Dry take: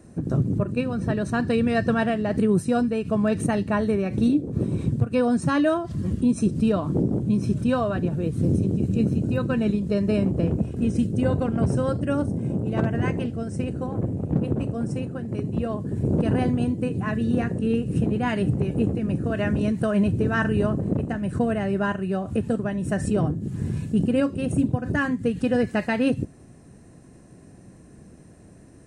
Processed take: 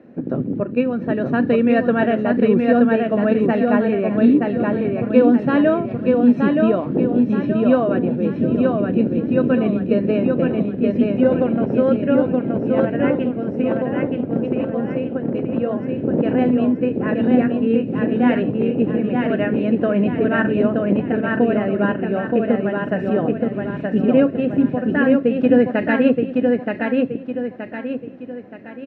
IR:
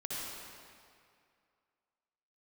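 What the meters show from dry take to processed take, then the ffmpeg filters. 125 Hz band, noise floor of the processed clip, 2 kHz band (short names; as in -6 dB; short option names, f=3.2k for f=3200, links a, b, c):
-2.5 dB, -31 dBFS, +5.5 dB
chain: -af "highpass=240,equalizer=f=250:t=q:w=4:g=6,equalizer=f=520:t=q:w=4:g=5,equalizer=f=1.1k:t=q:w=4:g=-5,lowpass=f=2.9k:w=0.5412,lowpass=f=2.9k:w=1.3066,aecho=1:1:924|1848|2772|3696|4620:0.708|0.297|0.125|0.0525|0.022,volume=4dB"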